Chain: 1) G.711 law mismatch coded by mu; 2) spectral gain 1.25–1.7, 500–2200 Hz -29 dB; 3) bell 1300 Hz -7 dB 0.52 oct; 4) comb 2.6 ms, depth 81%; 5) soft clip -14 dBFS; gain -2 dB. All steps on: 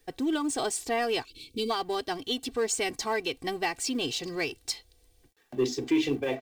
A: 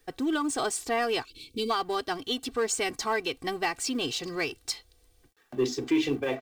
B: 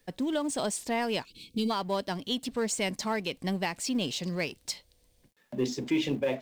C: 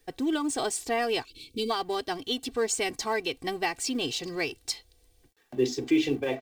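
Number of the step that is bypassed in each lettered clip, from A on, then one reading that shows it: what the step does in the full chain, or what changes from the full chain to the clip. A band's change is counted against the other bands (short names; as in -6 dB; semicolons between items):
3, 1 kHz band +1.5 dB; 4, 125 Hz band +8.0 dB; 5, distortion -23 dB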